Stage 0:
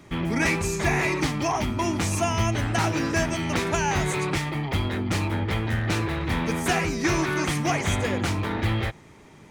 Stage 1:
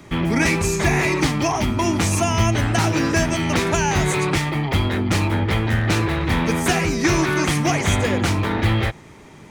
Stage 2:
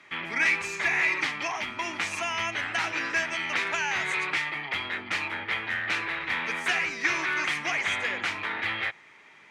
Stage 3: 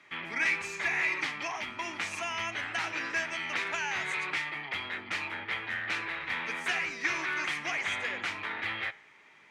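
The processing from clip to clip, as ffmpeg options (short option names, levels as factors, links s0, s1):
-filter_complex "[0:a]acrossover=split=430|3000[s0][s1][s2];[s1]acompressor=threshold=0.0501:ratio=6[s3];[s0][s3][s2]amix=inputs=3:normalize=0,volume=2"
-af "bandpass=f=2100:t=q:w=1.6:csg=0"
-af "flanger=delay=6.7:depth=3.9:regen=-90:speed=0.72:shape=sinusoidal"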